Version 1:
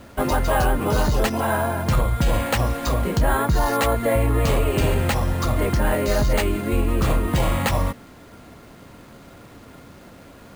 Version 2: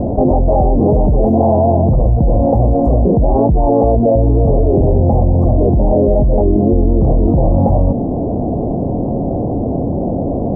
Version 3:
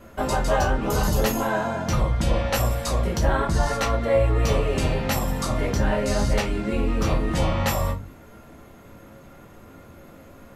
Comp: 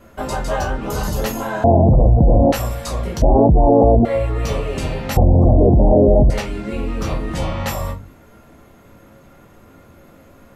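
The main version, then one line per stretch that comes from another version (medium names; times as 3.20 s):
3
1.64–2.52 s: from 2
3.22–4.05 s: from 2
5.17–6.30 s: from 2
not used: 1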